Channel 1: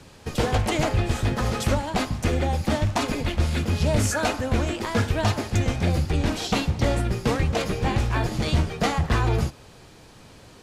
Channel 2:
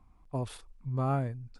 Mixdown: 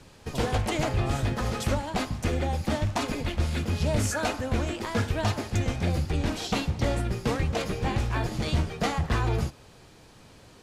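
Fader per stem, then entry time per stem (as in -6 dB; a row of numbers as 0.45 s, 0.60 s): -4.0 dB, -3.5 dB; 0.00 s, 0.00 s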